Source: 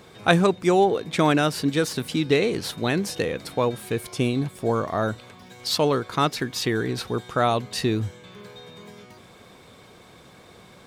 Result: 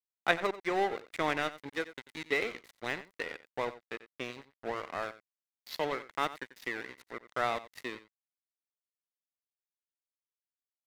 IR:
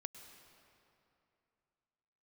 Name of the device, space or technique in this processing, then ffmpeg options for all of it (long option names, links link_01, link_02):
pocket radio on a weak battery: -af "highpass=390,lowpass=3900,aeval=exprs='sgn(val(0))*max(abs(val(0))-0.0355,0)':channel_layout=same,equalizer=frequency=2000:width_type=o:width=0.29:gain=10.5,aecho=1:1:90:0.168,volume=-7.5dB"